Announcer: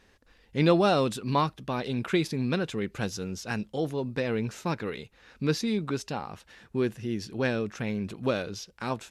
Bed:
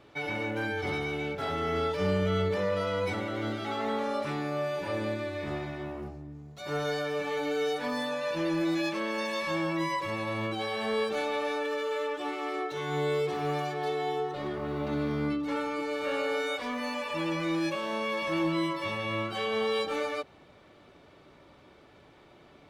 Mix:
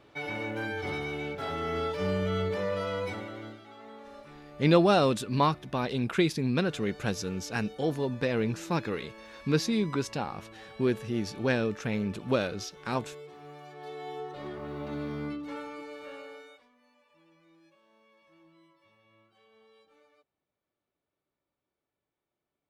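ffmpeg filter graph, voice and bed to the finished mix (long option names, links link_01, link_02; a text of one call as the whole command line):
ffmpeg -i stem1.wav -i stem2.wav -filter_complex "[0:a]adelay=4050,volume=0.5dB[link_01];[1:a]volume=10dB,afade=type=out:start_time=2.93:duration=0.71:silence=0.177828,afade=type=in:start_time=13.59:duration=0.87:silence=0.251189,afade=type=out:start_time=15.17:duration=1.52:silence=0.0421697[link_02];[link_01][link_02]amix=inputs=2:normalize=0" out.wav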